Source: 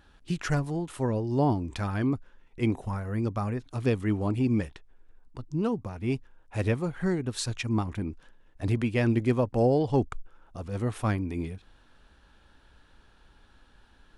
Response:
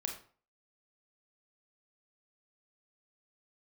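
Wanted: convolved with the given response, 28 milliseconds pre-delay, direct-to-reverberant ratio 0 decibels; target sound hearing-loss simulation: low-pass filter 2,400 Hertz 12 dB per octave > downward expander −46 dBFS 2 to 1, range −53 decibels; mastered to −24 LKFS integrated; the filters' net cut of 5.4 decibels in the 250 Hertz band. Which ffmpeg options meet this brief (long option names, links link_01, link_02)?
-filter_complex "[0:a]equalizer=frequency=250:width_type=o:gain=-7,asplit=2[link_01][link_02];[1:a]atrim=start_sample=2205,adelay=28[link_03];[link_02][link_03]afir=irnorm=-1:irlink=0,volume=-0.5dB[link_04];[link_01][link_04]amix=inputs=2:normalize=0,lowpass=2400,agate=range=-53dB:threshold=-46dB:ratio=2,volume=4.5dB"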